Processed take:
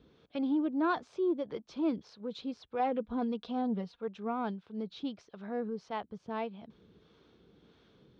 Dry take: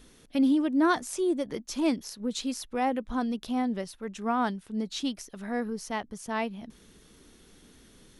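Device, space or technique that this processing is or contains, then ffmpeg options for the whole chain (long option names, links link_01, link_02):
guitar amplifier with harmonic tremolo: -filter_complex "[0:a]asettb=1/sr,asplit=3[link_01][link_02][link_03];[link_01]atrim=end=2.794[link_04];[link_02]atrim=start=2.79:end=4.08,asetpts=PTS-STARTPTS,afade=type=in:duration=0.004:curve=qsin,afade=type=out:start_time=1.286:duration=0.004:curve=qsin,aecho=1:1:4.2:0.74,atrim=end_sample=56889[link_05];[link_03]atrim=start=4.076[link_06];[link_04][link_05]acrossfade=duration=0.004:curve1=hsin:curve2=qsin[link_07];[link_07][link_06]acrossfade=duration=0.004:curve1=qsin:curve2=hsin,acrossover=split=520[link_08][link_09];[link_08]aeval=exprs='val(0)*(1-0.5/2+0.5/2*cos(2*PI*1.6*n/s))':channel_layout=same[link_10];[link_09]aeval=exprs='val(0)*(1-0.5/2-0.5/2*cos(2*PI*1.6*n/s))':channel_layout=same[link_11];[link_10][link_11]amix=inputs=2:normalize=0,asoftclip=type=tanh:threshold=-18.5dB,highpass=97,equalizer=frequency=250:width_type=q:width=4:gain=-6,equalizer=frequency=460:width_type=q:width=4:gain=3,equalizer=frequency=1900:width_type=q:width=4:gain=-9,equalizer=frequency=2800:width_type=q:width=4:gain=-5,lowpass=frequency=3700:width=0.5412,lowpass=frequency=3700:width=1.3066,equalizer=frequency=81:width_type=o:width=2.6:gain=3.5,volume=-2dB"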